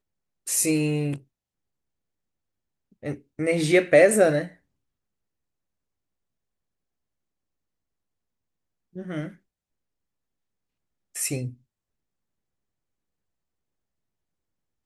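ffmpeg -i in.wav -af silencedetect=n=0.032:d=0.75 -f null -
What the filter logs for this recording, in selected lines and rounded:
silence_start: 1.16
silence_end: 3.05 | silence_duration: 1.89
silence_start: 4.46
silence_end: 8.97 | silence_duration: 4.51
silence_start: 9.28
silence_end: 11.16 | silence_duration: 1.88
silence_start: 11.48
silence_end: 14.86 | silence_duration: 3.38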